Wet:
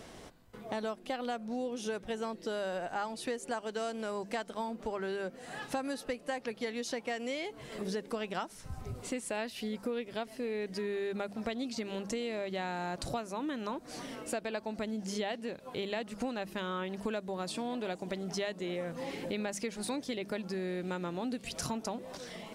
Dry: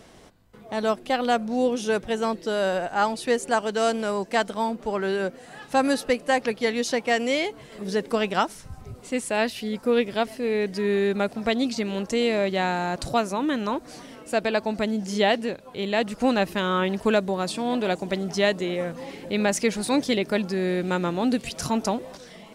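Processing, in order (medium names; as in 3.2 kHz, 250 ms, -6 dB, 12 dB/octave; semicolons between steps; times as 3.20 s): hum notches 50/100/150/200 Hz; compression 6:1, threshold -34 dBFS, peak gain reduction 17 dB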